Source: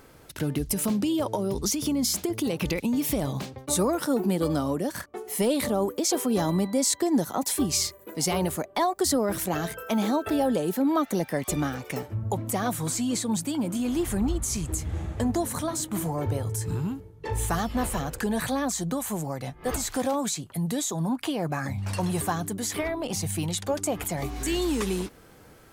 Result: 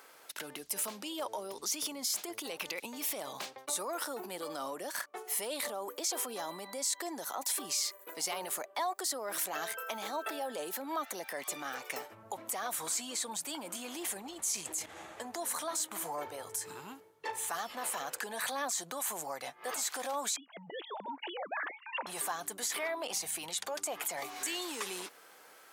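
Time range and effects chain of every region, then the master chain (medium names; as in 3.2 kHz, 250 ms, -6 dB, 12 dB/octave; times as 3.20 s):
13.94–14.86 s: peaking EQ 1.3 kHz -7 dB 0.73 oct + level flattener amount 100%
20.36–22.07 s: formants replaced by sine waves + compression 2:1, threshold -33 dBFS
whole clip: peak limiter -23 dBFS; high-pass 720 Hz 12 dB/octave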